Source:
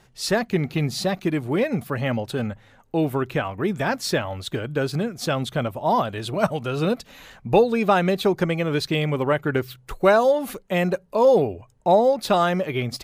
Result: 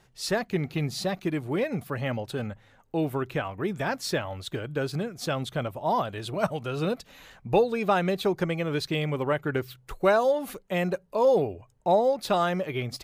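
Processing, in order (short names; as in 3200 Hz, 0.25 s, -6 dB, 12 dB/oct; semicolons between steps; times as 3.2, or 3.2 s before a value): bell 230 Hz -4 dB 0.22 oct; gain -5 dB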